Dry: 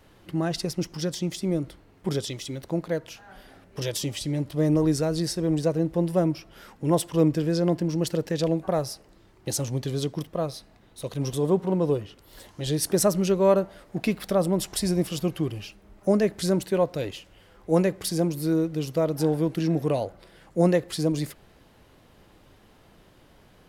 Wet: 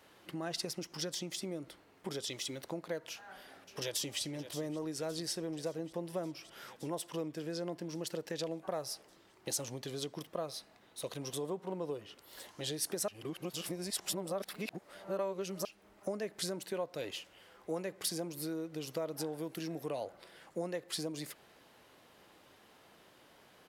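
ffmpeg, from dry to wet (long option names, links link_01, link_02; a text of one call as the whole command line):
ffmpeg -i in.wav -filter_complex "[0:a]asplit=2[link_01][link_02];[link_02]afade=type=in:start_time=3.1:duration=0.01,afade=type=out:start_time=4.21:duration=0.01,aecho=0:1:570|1140|1710|2280|2850|3420|3990|4560|5130|5700:0.251189|0.175832|0.123082|0.0861577|0.0603104|0.0422173|0.0295521|0.0206865|0.0144805|0.0101364[link_03];[link_01][link_03]amix=inputs=2:normalize=0,asettb=1/sr,asplit=3[link_04][link_05][link_06];[link_04]atrim=end=19.384[link_07];[link_05]atrim=start=19.38:end=19.86,asetpts=PTS-STARTPTS,afade=type=in:duration=0.004:curve=qsin,afade=type=out:start_time=0.476:duration=0.004:curve=qsin,highshelf=frequency=9200:gain=10[link_08];[link_06]atrim=start=19.856[link_09];[link_07][link_08]acrossfade=duration=0.004:curve1=hsin:curve2=qsin[link_10];[link_10][link_09]acrossfade=duration=0.004:curve1=qsin:curve2=hsin,asplit=3[link_11][link_12][link_13];[link_11]atrim=end=13.082[link_14];[link_12]atrim=start=13.078:end=15.652,asetpts=PTS-STARTPTS,areverse[link_15];[link_13]atrim=start=15.648[link_16];[link_14][link_15]acrossfade=duration=0.004:curve1=hsin:curve2=hsin[link_17];[link_17][link_16]acrossfade=duration=0.004:curve1=hsin:curve2=hsin,acompressor=threshold=-29dB:ratio=6,highpass=frequency=530:poles=1,volume=-1.5dB" out.wav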